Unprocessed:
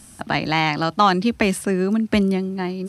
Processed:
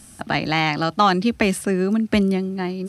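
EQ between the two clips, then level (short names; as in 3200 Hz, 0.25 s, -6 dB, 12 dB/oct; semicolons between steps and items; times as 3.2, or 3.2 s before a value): notch 980 Hz, Q 11; 0.0 dB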